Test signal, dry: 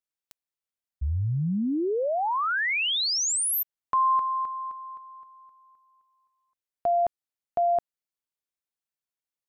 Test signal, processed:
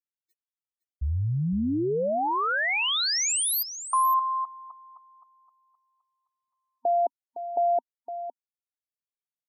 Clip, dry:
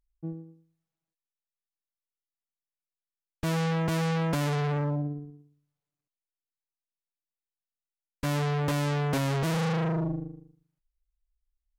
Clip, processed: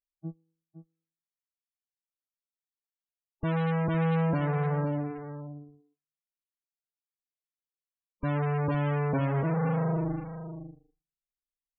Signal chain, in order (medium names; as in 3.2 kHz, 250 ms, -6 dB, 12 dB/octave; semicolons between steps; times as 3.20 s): loudest bins only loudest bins 32; spectral noise reduction 27 dB; delay 511 ms -11.5 dB